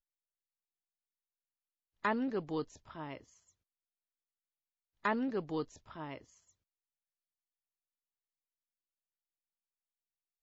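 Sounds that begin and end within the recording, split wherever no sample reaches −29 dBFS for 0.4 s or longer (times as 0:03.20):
0:02.05–0:02.62
0:05.05–0:05.62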